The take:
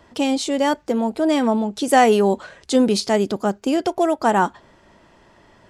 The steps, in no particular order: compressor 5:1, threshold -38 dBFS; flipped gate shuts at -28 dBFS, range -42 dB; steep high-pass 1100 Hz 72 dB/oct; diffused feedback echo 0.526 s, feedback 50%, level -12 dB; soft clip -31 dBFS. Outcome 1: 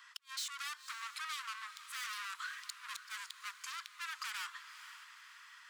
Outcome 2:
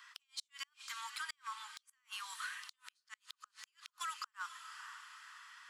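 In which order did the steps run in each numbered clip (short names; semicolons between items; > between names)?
soft clip > steep high-pass > compressor > flipped gate > diffused feedback echo; steep high-pass > compressor > diffused feedback echo > flipped gate > soft clip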